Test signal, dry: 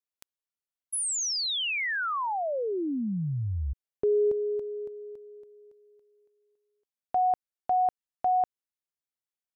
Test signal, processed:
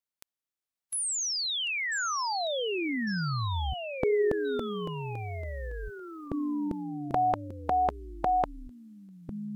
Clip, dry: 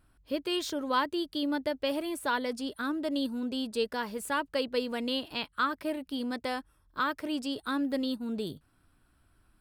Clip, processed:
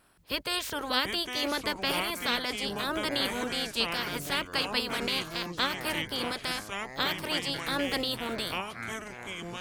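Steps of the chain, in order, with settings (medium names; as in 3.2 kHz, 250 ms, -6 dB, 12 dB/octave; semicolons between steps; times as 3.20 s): spectral peaks clipped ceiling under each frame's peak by 23 dB; ever faster or slower copies 612 ms, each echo -6 st, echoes 3, each echo -6 dB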